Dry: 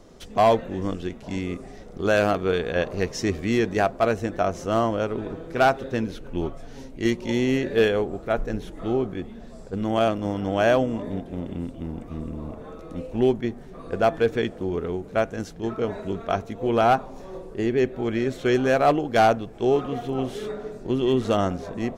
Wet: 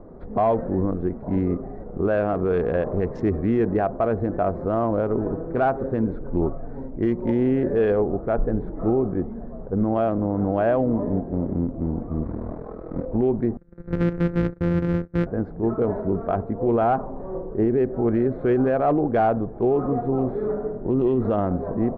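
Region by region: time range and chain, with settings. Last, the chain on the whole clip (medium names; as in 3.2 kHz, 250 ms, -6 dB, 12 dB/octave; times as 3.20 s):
12.23–13.06 s: hum notches 50/100/150/200/250/300 Hz + ring modulator 20 Hz + companded quantiser 4-bit
13.57–15.27 s: sorted samples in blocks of 256 samples + gate -39 dBFS, range -22 dB + high-order bell 860 Hz -15 dB 1 oct
whole clip: local Wiener filter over 15 samples; low-pass 1.2 kHz 12 dB/octave; peak limiter -20 dBFS; trim +7 dB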